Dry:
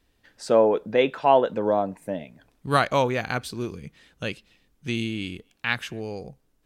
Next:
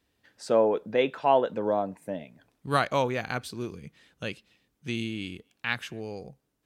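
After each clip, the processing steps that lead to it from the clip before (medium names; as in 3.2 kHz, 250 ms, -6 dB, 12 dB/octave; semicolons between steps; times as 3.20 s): high-pass 73 Hz; trim -4 dB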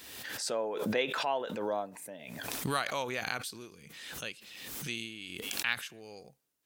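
tilt EQ +3 dB/octave; tremolo triangle 1.3 Hz, depth 45%; swell ahead of each attack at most 36 dB/s; trim -5 dB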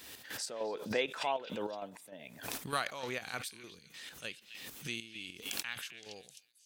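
square tremolo 3.3 Hz, depth 60%, duty 50%; repeats whose band climbs or falls 259 ms, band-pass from 2.9 kHz, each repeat 0.7 oct, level -8.5 dB; trim -2 dB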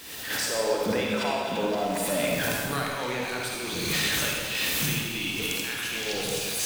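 jump at every zero crossing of -43.5 dBFS; recorder AGC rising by 31 dB/s; reverberation RT60 1.8 s, pre-delay 43 ms, DRR -2.5 dB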